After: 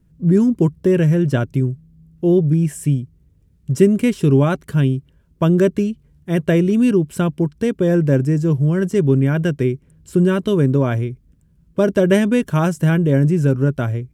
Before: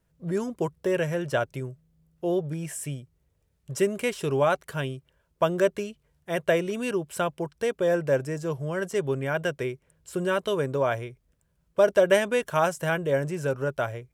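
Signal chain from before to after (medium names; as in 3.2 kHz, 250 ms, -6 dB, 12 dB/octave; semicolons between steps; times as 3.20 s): resonant low shelf 400 Hz +13 dB, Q 1.5; trim +2.5 dB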